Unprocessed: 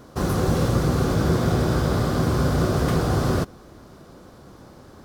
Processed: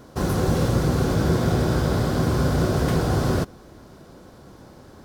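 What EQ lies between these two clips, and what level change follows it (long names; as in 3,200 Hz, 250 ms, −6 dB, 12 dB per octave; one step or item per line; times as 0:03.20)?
notch filter 1,200 Hz, Q 13
0.0 dB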